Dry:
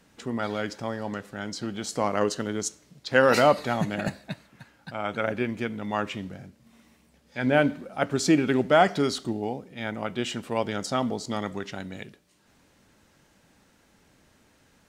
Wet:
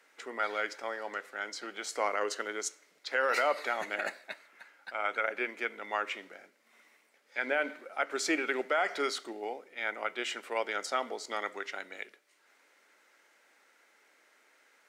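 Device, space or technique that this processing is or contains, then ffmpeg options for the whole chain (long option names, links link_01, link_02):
laptop speaker: -af "highpass=frequency=380:width=0.5412,highpass=frequency=380:width=1.3066,equalizer=frequency=1400:width_type=o:width=0.4:gain=6.5,equalizer=frequency=2100:width_type=o:width=0.38:gain=10,alimiter=limit=-13dB:level=0:latency=1:release=105,volume=-5dB"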